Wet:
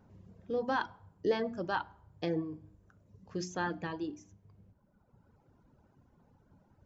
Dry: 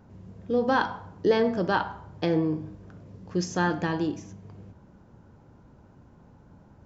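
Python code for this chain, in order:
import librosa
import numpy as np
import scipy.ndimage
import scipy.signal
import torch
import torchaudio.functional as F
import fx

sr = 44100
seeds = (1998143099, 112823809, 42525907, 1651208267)

y = fx.dereverb_blind(x, sr, rt60_s=1.7)
y = fx.hum_notches(y, sr, base_hz=60, count=6)
y = F.gain(torch.from_numpy(y), -7.5).numpy()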